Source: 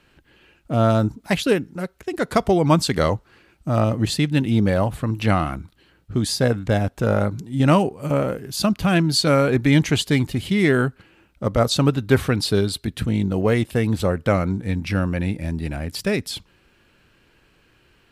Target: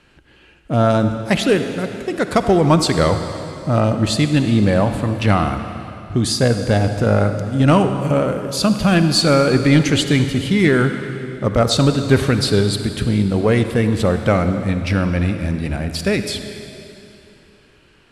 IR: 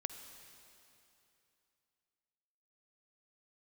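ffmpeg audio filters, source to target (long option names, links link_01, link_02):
-filter_complex "[0:a]lowpass=frequency=11000:width=0.5412,lowpass=frequency=11000:width=1.3066,acontrast=48[link_01];[1:a]atrim=start_sample=2205[link_02];[link_01][link_02]afir=irnorm=-1:irlink=0"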